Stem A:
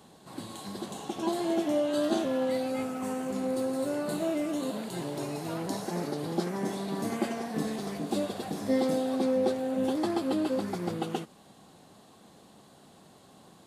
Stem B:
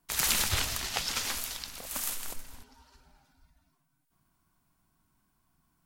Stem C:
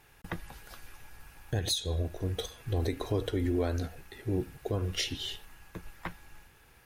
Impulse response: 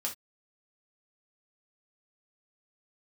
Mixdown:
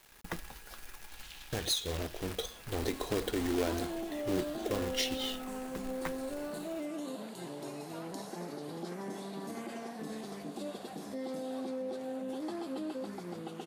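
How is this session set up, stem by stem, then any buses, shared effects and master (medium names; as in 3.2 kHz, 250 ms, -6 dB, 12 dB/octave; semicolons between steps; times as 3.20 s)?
-7.0 dB, 2.45 s, no send, peak limiter -23.5 dBFS, peak gain reduction 9 dB
-17.5 dB, 1.00 s, no send, band-pass filter 3 kHz, Q 1.9
-1.0 dB, 0.00 s, no send, companded quantiser 4-bit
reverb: none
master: peaking EQ 98 Hz -11 dB 0.82 oct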